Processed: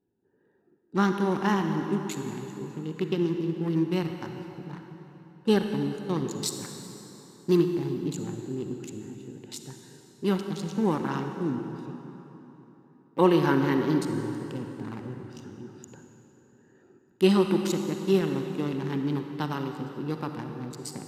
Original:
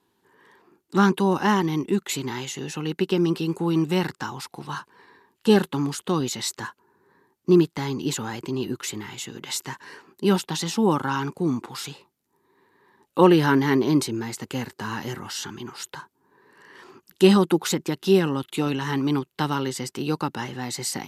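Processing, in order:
adaptive Wiener filter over 41 samples
0:06.42–0:07.57: high-shelf EQ 3,700 Hz +11.5 dB
on a send: convolution reverb RT60 3.6 s, pre-delay 33 ms, DRR 5 dB
on the sum: level −5 dB

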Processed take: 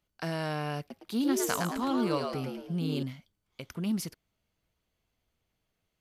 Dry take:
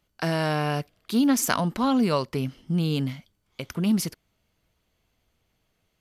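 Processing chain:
0:00.79–0:03.03: echo with shifted repeats 110 ms, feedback 39%, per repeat +92 Hz, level −4 dB
level −8 dB

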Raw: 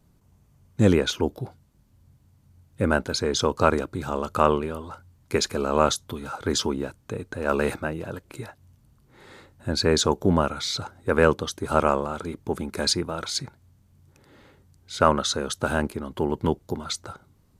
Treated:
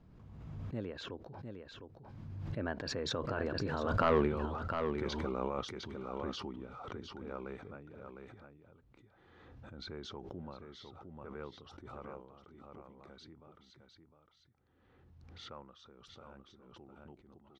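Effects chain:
source passing by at 0:04.21, 29 m/s, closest 2.2 metres
in parallel at +1.5 dB: compressor whose output falls as the input rises −45 dBFS, ratio −0.5
on the sum: hard clipping −20.5 dBFS, distortion −11 dB
high-frequency loss of the air 230 metres
on a send: single-tap delay 706 ms −7 dB
on the sum: background raised ahead of every attack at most 32 dB per second

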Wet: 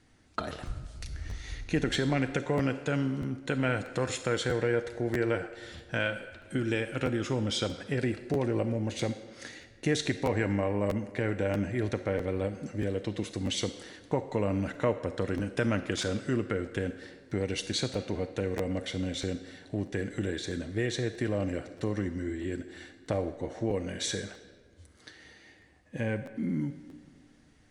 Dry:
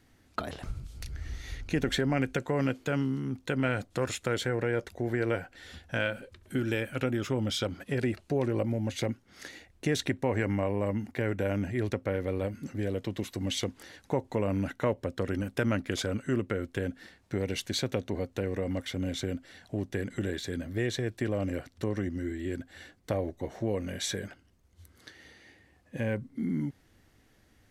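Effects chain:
downsampling to 22,050 Hz
on a send at −8.5 dB: bass and treble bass −13 dB, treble +6 dB + convolution reverb RT60 1.6 s, pre-delay 7 ms
on the sum: regular buffer underruns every 0.64 s, samples 512, repeat, from 0:00.65

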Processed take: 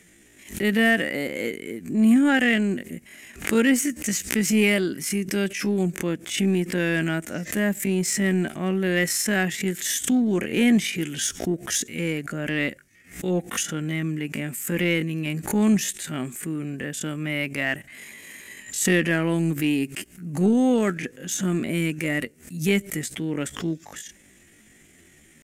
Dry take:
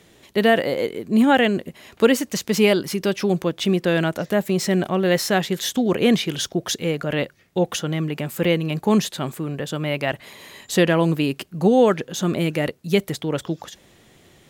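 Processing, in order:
octave-band graphic EQ 125/250/500/1,000/2,000/4,000/8,000 Hz −7/+4/−7/−11/+8/−11/+9 dB
downsampling to 32,000 Hz
in parallel at −9 dB: hard clipping −20 dBFS, distortion −8 dB
on the sum: tempo change 0.57×
background raised ahead of every attack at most 140 dB per second
level −3 dB

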